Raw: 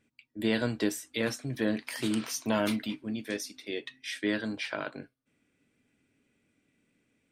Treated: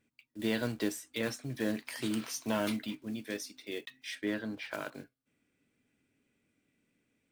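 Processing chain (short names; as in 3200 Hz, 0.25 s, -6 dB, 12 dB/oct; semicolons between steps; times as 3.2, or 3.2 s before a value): block floating point 5-bit; 4.15–4.73 high shelf 3900 Hz -11 dB; gain -4 dB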